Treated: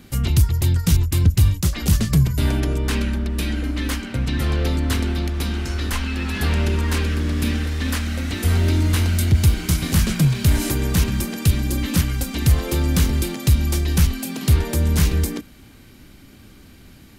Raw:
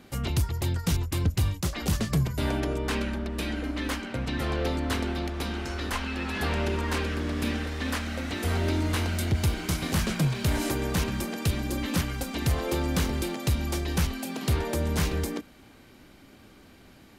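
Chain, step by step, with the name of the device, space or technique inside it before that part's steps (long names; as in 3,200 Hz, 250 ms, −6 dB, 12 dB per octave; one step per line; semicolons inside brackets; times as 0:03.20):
smiley-face EQ (low-shelf EQ 190 Hz +7 dB; parametric band 670 Hz −6 dB 1.9 octaves; high-shelf EQ 7,800 Hz +6.5 dB)
level +5 dB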